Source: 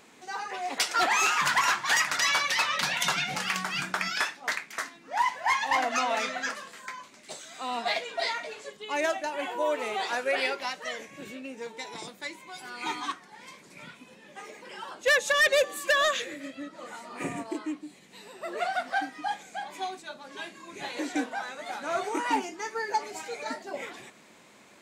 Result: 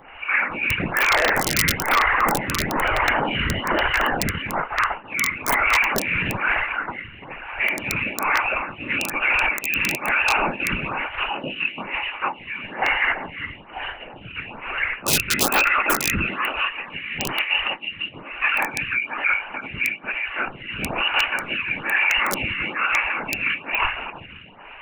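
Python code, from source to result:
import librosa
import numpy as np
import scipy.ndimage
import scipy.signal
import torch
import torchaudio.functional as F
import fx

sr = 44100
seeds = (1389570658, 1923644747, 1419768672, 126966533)

p1 = fx.high_shelf(x, sr, hz=2100.0, db=2.5)
p2 = p1 + fx.echo_single(p1, sr, ms=340, db=-10.0, dry=0)
p3 = fx.freq_invert(p2, sr, carrier_hz=3100)
p4 = fx.lpc_monotone(p3, sr, seeds[0], pitch_hz=290.0, order=8)
p5 = scipy.signal.sosfilt(scipy.signal.butter(4, 81.0, 'highpass', fs=sr, output='sos'), p4)
p6 = fx.whisperise(p5, sr, seeds[1])
p7 = fx.low_shelf(p6, sr, hz=120.0, db=8.5)
p8 = fx.over_compress(p7, sr, threshold_db=-33.0, ratio=-0.5)
p9 = p7 + (p8 * 10.0 ** (0.0 / 20.0))
p10 = (np.mod(10.0 ** (15.0 / 20.0) * p9 + 1.0, 2.0) - 1.0) / 10.0 ** (15.0 / 20.0)
p11 = fx.stagger_phaser(p10, sr, hz=1.1)
y = p11 * 10.0 ** (7.5 / 20.0)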